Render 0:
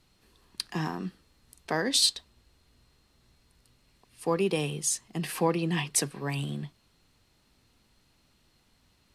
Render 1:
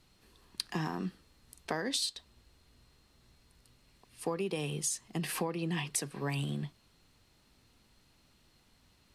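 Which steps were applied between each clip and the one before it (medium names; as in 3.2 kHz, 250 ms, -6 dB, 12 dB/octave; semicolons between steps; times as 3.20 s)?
compression 12:1, threshold -30 dBFS, peak gain reduction 12 dB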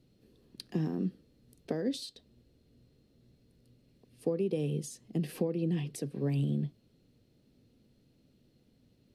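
ten-band graphic EQ 125 Hz +10 dB, 250 Hz +10 dB, 500 Hz +11 dB, 1 kHz -11 dB, 2 kHz -3 dB, 8 kHz -6 dB; trim -7 dB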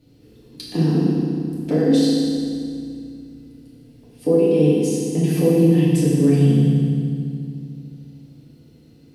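FDN reverb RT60 2.3 s, low-frequency decay 1.5×, high-frequency decay 0.85×, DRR -8 dB; trim +6 dB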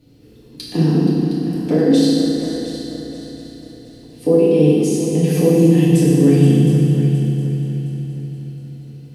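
multi-head delay 238 ms, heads second and third, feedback 44%, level -11 dB; trim +3 dB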